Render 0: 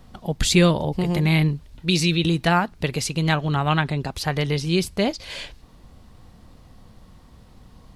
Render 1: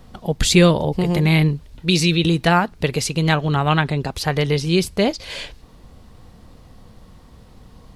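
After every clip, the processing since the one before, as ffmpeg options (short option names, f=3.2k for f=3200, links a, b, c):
-af "equalizer=f=460:t=o:w=0.4:g=3.5,volume=3dB"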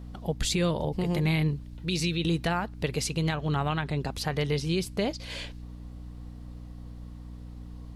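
-af "alimiter=limit=-10.5dB:level=0:latency=1:release=176,aeval=exprs='val(0)+0.0224*(sin(2*PI*60*n/s)+sin(2*PI*2*60*n/s)/2+sin(2*PI*3*60*n/s)/3+sin(2*PI*4*60*n/s)/4+sin(2*PI*5*60*n/s)/5)':c=same,volume=-7.5dB"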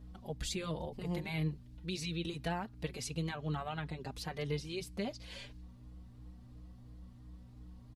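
-filter_complex "[0:a]asplit=2[a][b];[b]adelay=4.4,afreqshift=2.9[c];[a][c]amix=inputs=2:normalize=1,volume=-7.5dB"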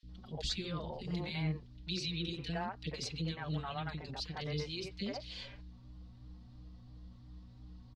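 -filter_complex "[0:a]lowpass=f=4.5k:t=q:w=2,acrossover=split=420|2200[a][b][c];[a]adelay=30[d];[b]adelay=90[e];[d][e][c]amix=inputs=3:normalize=0"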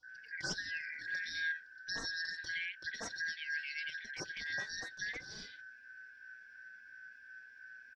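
-af "afftfilt=real='real(if(lt(b,272),68*(eq(floor(b/68),0)*3+eq(floor(b/68),1)*0+eq(floor(b/68),2)*1+eq(floor(b/68),3)*2)+mod(b,68),b),0)':imag='imag(if(lt(b,272),68*(eq(floor(b/68),0)*3+eq(floor(b/68),1)*0+eq(floor(b/68),2)*1+eq(floor(b/68),3)*2)+mod(b,68),b),0)':win_size=2048:overlap=0.75,volume=-2dB"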